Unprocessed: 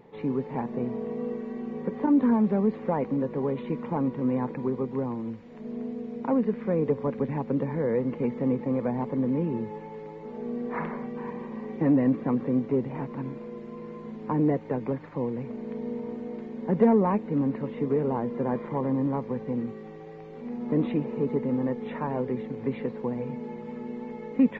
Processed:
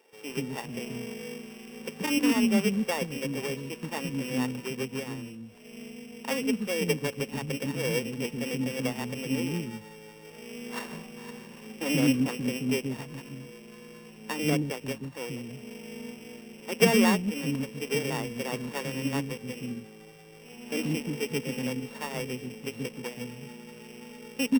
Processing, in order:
samples sorted by size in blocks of 16 samples
multiband delay without the direct sound highs, lows 130 ms, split 320 Hz
expander for the loud parts 1.5 to 1, over −36 dBFS
level +2.5 dB

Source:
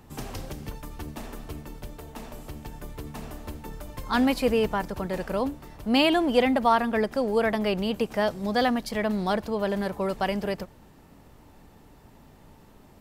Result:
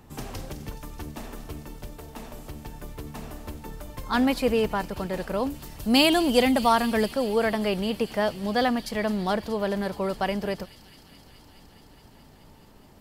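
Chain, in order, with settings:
0:05.50–0:07.11: bass and treble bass +4 dB, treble +12 dB
delay with a high-pass on its return 211 ms, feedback 85%, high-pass 3,900 Hz, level −12 dB

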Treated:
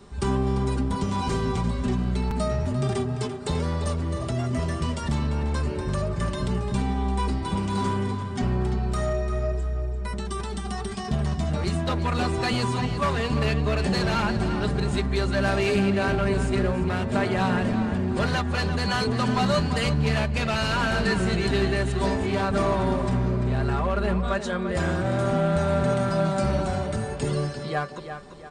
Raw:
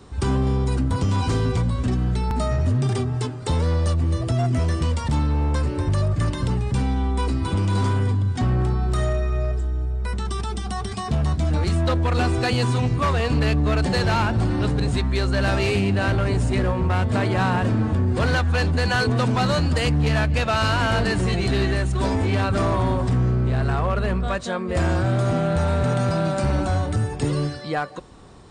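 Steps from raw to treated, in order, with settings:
comb filter 5 ms, depth 57%
on a send: tape delay 344 ms, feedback 44%, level −8 dB, low-pass 5,200 Hz
on the sum: level −3.5 dB

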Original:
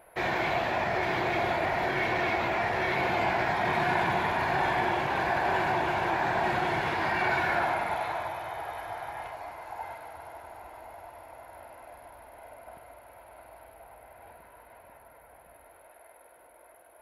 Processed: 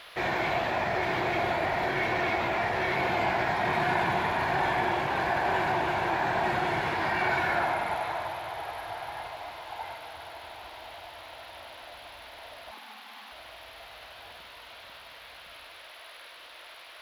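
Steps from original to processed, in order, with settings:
0:12.71–0:13.32: frequency shifter +160 Hz
noise in a band 890–4,000 Hz −49 dBFS
bit reduction 11 bits

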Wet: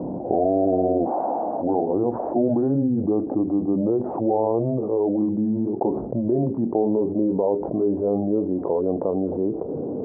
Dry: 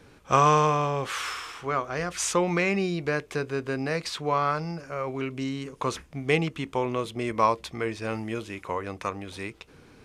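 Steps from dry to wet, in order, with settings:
pitch glide at a constant tempo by −8.5 semitones ending unshifted
high-pass filter 240 Hz 12 dB per octave
brickwall limiter −19 dBFS, peak gain reduction 9.5 dB
Butterworth low-pass 680 Hz 36 dB per octave
envelope flattener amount 70%
level +8 dB

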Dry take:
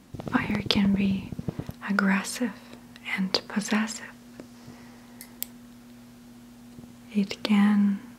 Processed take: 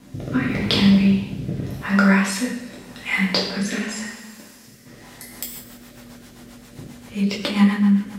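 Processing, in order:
0:04.04–0:04.86: first-order pre-emphasis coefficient 0.8
in parallel at +2 dB: downward compressor, threshold −34 dBFS, peak gain reduction 16 dB
on the sum: coupled-rooms reverb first 0.76 s, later 2.8 s, from −20 dB, DRR −5.5 dB
rotating-speaker cabinet horn 0.85 Hz, later 7.5 Hz, at 0:04.80
level −1.5 dB

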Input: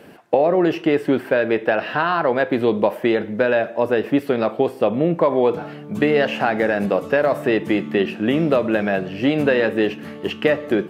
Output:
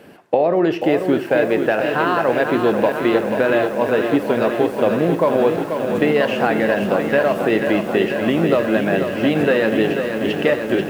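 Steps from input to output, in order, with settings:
on a send at −17 dB: convolution reverb RT60 0.30 s, pre-delay 60 ms
on the sum: feedback echo at a low word length 487 ms, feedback 80%, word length 7 bits, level −7 dB

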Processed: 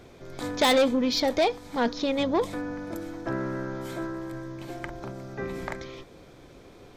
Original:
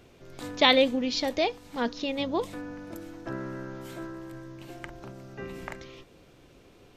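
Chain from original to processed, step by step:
high-shelf EQ 9,600 Hz −4 dB
notch filter 2,800 Hz, Q 7.5
soft clipping −23 dBFS, distortion −8 dB
parametric band 720 Hz +2 dB 1.9 octaves
level +5 dB

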